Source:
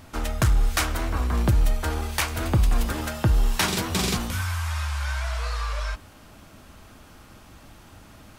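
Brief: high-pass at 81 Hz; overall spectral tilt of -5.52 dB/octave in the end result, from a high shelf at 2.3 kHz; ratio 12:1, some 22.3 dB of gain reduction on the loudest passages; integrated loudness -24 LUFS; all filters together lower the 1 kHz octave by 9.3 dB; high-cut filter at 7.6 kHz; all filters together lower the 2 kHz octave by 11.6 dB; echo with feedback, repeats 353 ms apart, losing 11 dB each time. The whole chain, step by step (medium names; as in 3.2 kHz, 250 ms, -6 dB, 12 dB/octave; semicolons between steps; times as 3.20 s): high-pass 81 Hz; low-pass 7.6 kHz; peaking EQ 1 kHz -8 dB; peaking EQ 2 kHz -9 dB; treble shelf 2.3 kHz -7 dB; compression 12:1, threshold -40 dBFS; feedback delay 353 ms, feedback 28%, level -11 dB; trim +21.5 dB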